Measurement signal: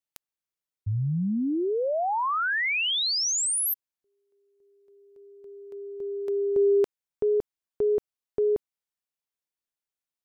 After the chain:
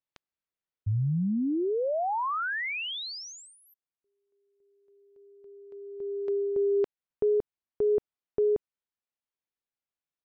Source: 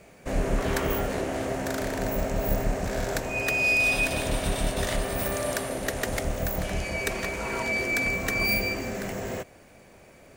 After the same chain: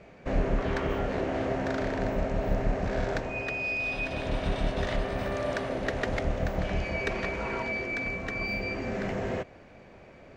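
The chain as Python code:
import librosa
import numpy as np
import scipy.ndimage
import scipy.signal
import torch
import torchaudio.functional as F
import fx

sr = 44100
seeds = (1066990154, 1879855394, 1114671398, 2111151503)

y = fx.rider(x, sr, range_db=4, speed_s=0.5)
y = fx.air_absorb(y, sr, metres=190.0)
y = F.gain(torch.from_numpy(y), -2.0).numpy()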